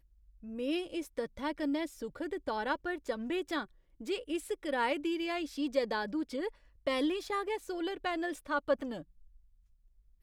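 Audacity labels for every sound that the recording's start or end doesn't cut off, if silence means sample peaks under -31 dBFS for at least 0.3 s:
0.590000	3.610000	sound
4.090000	6.480000	sound
6.870000	8.920000	sound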